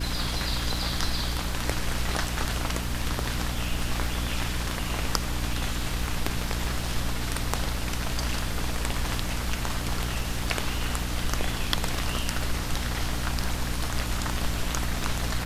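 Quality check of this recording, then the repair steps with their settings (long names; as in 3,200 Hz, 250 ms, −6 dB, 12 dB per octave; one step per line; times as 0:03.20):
surface crackle 23 per second −33 dBFS
mains hum 60 Hz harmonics 5 −32 dBFS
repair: click removal
hum removal 60 Hz, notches 5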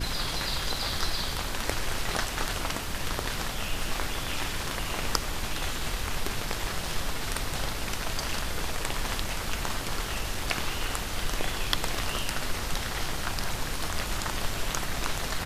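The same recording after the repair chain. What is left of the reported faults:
none of them is left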